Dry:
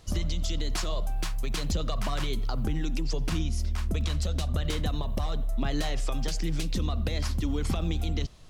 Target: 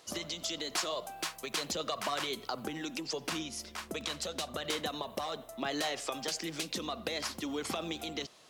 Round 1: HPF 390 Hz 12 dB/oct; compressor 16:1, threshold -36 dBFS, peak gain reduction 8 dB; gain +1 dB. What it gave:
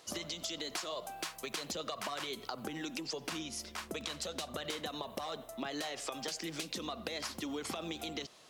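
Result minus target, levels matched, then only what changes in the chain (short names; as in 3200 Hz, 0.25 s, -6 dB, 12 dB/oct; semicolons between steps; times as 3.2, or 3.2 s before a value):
compressor: peak gain reduction +8 dB
remove: compressor 16:1, threshold -36 dBFS, peak gain reduction 8 dB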